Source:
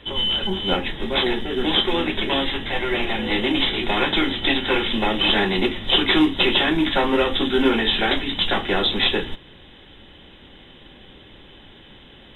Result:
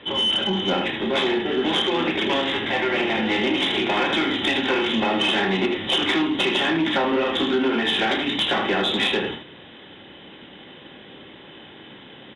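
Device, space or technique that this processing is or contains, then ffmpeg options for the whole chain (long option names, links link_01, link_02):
AM radio: -af "highpass=160,lowpass=3300,aecho=1:1:31|78:0.422|0.447,acompressor=threshold=-20dB:ratio=5,asoftclip=type=tanh:threshold=-16dB,volume=3.5dB"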